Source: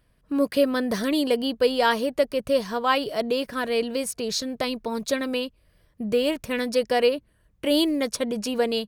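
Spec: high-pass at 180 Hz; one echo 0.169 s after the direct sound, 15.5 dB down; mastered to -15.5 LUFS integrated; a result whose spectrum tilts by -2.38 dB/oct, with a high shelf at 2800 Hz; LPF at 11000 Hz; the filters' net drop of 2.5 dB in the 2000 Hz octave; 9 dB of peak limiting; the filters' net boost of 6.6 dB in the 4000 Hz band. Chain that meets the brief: HPF 180 Hz; LPF 11000 Hz; bell 2000 Hz -7.5 dB; high shelf 2800 Hz +4.5 dB; bell 4000 Hz +7.5 dB; limiter -15.5 dBFS; echo 0.169 s -15.5 dB; gain +11 dB

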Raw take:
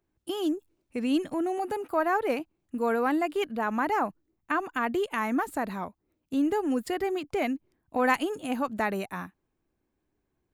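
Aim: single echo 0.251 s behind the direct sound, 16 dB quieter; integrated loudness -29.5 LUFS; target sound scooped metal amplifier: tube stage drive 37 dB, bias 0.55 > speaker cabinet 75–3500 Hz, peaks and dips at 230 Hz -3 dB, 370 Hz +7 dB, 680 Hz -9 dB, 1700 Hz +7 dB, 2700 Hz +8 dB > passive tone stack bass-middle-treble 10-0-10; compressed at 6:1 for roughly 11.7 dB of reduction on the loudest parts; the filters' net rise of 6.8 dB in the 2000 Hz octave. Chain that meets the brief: bell 2000 Hz +8 dB; compressor 6:1, threshold -28 dBFS; echo 0.251 s -16 dB; tube stage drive 37 dB, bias 0.55; speaker cabinet 75–3500 Hz, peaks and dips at 230 Hz -3 dB, 370 Hz +7 dB, 680 Hz -9 dB, 1700 Hz +7 dB, 2700 Hz +8 dB; passive tone stack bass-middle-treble 10-0-10; gain +16 dB

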